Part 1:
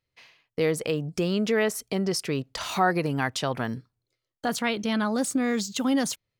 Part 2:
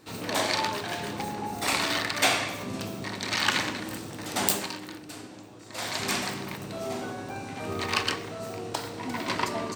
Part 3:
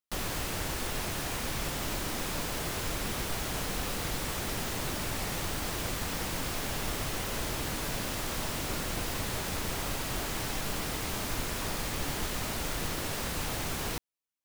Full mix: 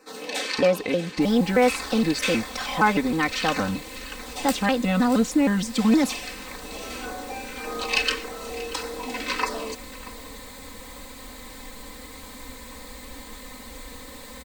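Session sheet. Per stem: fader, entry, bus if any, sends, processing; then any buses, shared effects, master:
+1.5 dB, 0.00 s, no send, no echo send, high shelf 5300 Hz -10 dB; shaped vibrato square 3.2 Hz, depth 250 cents
+0.5 dB, 0.00 s, no send, echo send -18.5 dB, weighting filter A; LFO notch saw down 1.7 Hz 550–3500 Hz; small resonant body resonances 430/2600 Hz, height 10 dB; auto duck -8 dB, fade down 0.85 s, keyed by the first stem
-10.5 dB, 1.10 s, no send, no echo send, ripple EQ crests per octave 1, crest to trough 8 dB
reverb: off
echo: echo 0.635 s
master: comb 3.9 ms, depth 90%

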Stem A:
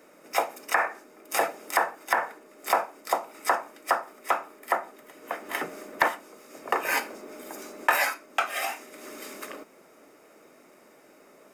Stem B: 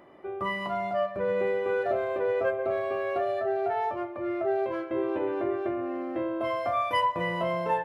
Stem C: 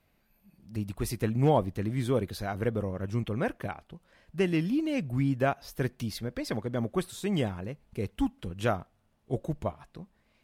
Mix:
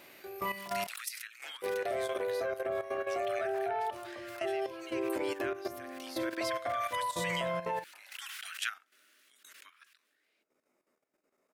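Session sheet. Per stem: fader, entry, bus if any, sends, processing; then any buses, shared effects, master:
-17.5 dB, 0.05 s, no send, detuned doubles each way 36 cents; auto duck -9 dB, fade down 1.75 s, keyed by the third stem
-3.0 dB, 0.00 s, muted 0.87–1.62, no send, notches 50/100/150/200/250/300/350/400 Hz; short-mantissa float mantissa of 8-bit
1.74 s -6 dB -> 2.42 s -14.5 dB -> 5.88 s -14.5 dB -> 6.28 s -7 dB, 0.00 s, no send, AGC gain up to 9.5 dB; steep high-pass 1400 Hz 48 dB/oct; backwards sustainer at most 22 dB/s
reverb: off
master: level quantiser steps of 11 dB

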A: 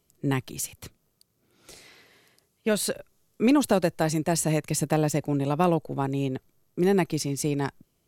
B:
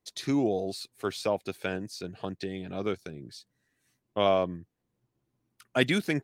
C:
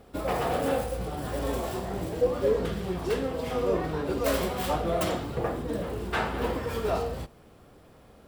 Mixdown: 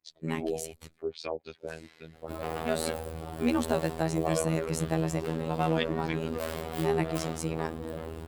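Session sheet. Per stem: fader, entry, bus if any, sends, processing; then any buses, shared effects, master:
-3.5 dB, 0.00 s, no send, expander -56 dBFS; bell 14000 Hz -7 dB 0.63 oct
-7.0 dB, 0.00 s, no send, LFO low-pass sine 3.5 Hz 420–5600 Hz
-2.5 dB, 2.15 s, no send, soft clip -25 dBFS, distortion -12 dB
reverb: off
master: bell 5800 Hz -3.5 dB 0.36 oct; robotiser 80.6 Hz

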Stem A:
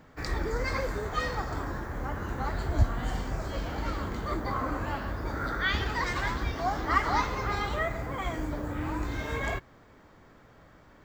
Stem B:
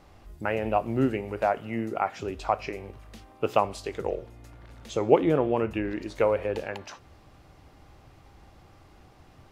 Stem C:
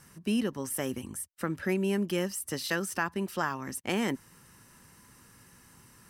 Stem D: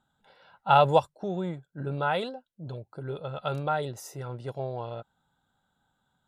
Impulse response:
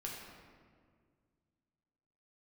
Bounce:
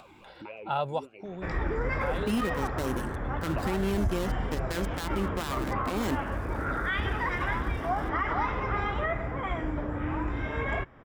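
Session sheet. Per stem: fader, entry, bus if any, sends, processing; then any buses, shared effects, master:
+1.5 dB, 1.25 s, no send, polynomial smoothing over 25 samples
-0.5 dB, 0.00 s, no send, bell 490 Hz -12 dB 2.4 oct; vowel sweep a-u 3.6 Hz
+3.0 dB, 2.00 s, no send, switching dead time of 0.23 ms
-9.5 dB, 0.00 s, no send, dry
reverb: off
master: upward compressor, threshold -35 dBFS; limiter -19.5 dBFS, peak gain reduction 9.5 dB

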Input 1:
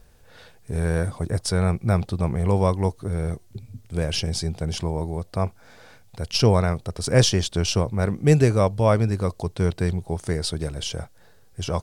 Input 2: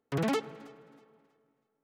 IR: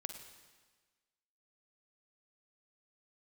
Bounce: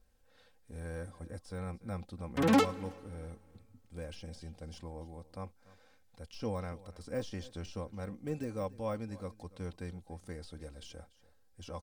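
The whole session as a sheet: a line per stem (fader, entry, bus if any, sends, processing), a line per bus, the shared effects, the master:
-18.5 dB, 0.00 s, no send, echo send -19.5 dB, de-esser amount 75%
+0.5 dB, 2.25 s, send -8.5 dB, no echo send, upward expander 1.5:1, over -40 dBFS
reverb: on, RT60 1.4 s, pre-delay 42 ms
echo: echo 0.29 s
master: comb 3.8 ms, depth 68%

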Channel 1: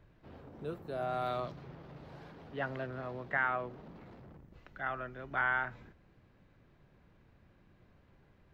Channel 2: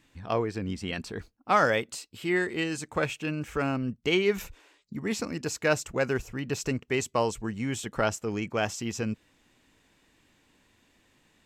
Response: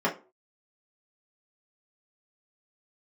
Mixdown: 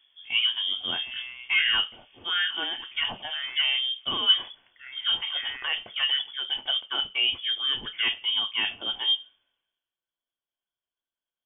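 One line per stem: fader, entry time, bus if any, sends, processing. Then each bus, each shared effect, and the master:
-2.5 dB, 0.00 s, send -23.5 dB, auto duck -8 dB, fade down 1.90 s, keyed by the second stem
-3.0 dB, 0.00 s, send -10 dB, tone controls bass +3 dB, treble +10 dB; limiter -19 dBFS, peak gain reduction 9 dB; three-band expander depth 100%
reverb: on, pre-delay 3 ms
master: inverted band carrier 3400 Hz

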